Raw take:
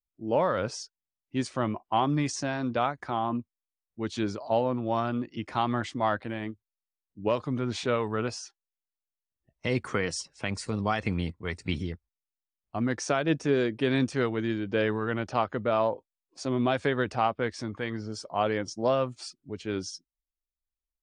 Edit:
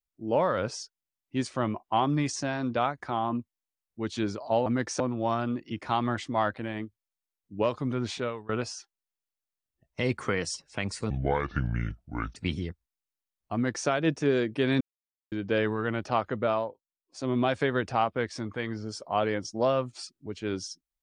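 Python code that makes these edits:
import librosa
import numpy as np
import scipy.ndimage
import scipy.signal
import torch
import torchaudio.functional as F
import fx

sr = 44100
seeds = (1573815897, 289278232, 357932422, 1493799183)

y = fx.edit(x, sr, fx.fade_out_to(start_s=7.72, length_s=0.43, floor_db=-22.5),
    fx.speed_span(start_s=10.76, length_s=0.83, speed=0.66),
    fx.duplicate(start_s=12.77, length_s=0.34, to_s=4.66),
    fx.silence(start_s=14.04, length_s=0.51),
    fx.fade_down_up(start_s=15.7, length_s=0.84, db=-14.5, fade_s=0.29), tone=tone)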